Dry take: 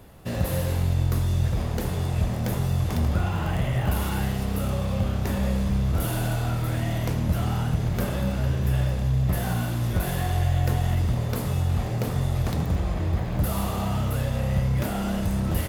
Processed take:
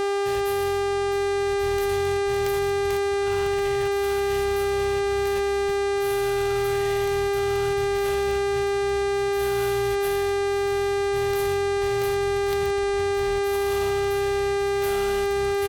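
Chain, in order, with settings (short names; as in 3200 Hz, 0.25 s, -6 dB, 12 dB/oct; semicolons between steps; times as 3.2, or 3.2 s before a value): passive tone stack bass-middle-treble 10-0-10; negative-ratio compressor -37 dBFS, ratio -0.5; buzz 400 Hz, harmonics 25, -24 dBFS -8 dB/oct; on a send: echo 1.133 s -13 dB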